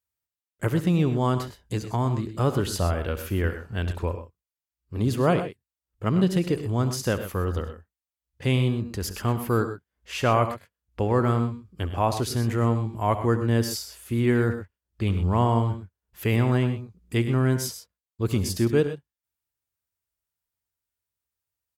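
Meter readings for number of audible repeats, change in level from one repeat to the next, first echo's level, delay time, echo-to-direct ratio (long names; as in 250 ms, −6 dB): 2, repeats not evenly spaced, −16.0 dB, 69 ms, −9.0 dB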